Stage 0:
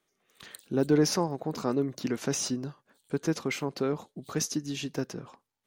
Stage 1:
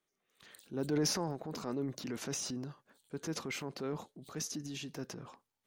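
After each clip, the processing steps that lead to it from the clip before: transient shaper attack -4 dB, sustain +7 dB; trim -8.5 dB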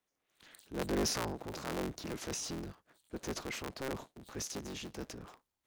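cycle switcher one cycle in 3, inverted; trim -1 dB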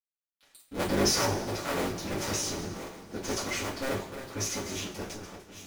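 backward echo that repeats 575 ms, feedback 50%, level -9 dB; crossover distortion -54 dBFS; two-slope reverb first 0.28 s, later 1.7 s, from -18 dB, DRR -9 dB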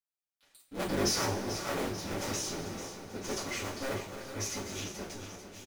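flange 1.2 Hz, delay 4.8 ms, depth 6.8 ms, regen -47%; feedback delay 440 ms, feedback 51%, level -11 dB

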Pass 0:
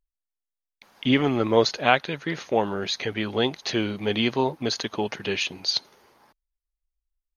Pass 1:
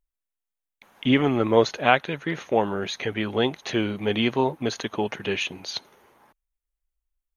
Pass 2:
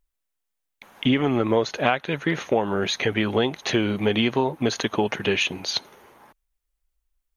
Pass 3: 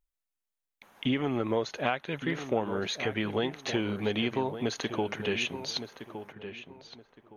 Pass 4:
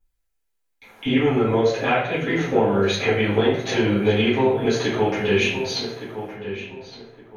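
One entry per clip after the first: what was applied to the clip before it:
peaking EQ 4.8 kHz -12.5 dB 0.51 oct; trim +1 dB
compression 6:1, threshold -23 dBFS, peak gain reduction 11.5 dB; trim +6 dB
filtered feedback delay 1165 ms, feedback 25%, low-pass 2.4 kHz, level -10.5 dB; trim -8 dB
reverberation RT60 0.75 s, pre-delay 4 ms, DRR -11 dB; trim -3 dB

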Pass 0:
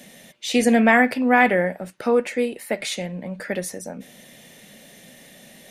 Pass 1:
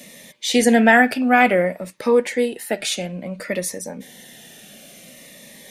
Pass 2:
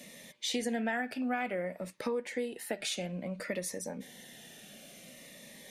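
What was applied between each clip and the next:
bass shelf 300 Hz -6 dB; Shepard-style phaser falling 0.57 Hz; trim +5.5 dB
treble shelf 10 kHz -4.5 dB; compression 5:1, threshold -24 dBFS, peak gain reduction 13.5 dB; trim -7.5 dB

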